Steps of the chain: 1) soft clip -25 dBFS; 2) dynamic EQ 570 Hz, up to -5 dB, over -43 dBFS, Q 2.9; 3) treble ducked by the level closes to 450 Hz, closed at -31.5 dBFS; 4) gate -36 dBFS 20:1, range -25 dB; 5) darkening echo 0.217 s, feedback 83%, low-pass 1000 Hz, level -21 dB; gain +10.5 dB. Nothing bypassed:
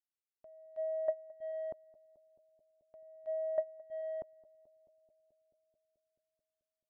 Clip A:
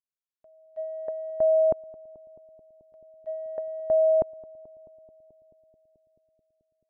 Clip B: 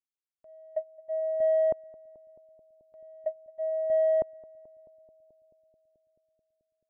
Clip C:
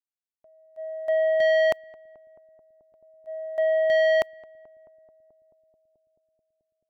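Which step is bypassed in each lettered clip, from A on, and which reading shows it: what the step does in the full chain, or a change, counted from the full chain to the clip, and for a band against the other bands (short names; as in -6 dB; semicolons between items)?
1, distortion -10 dB; 2, crest factor change -8.0 dB; 3, crest factor change -10.0 dB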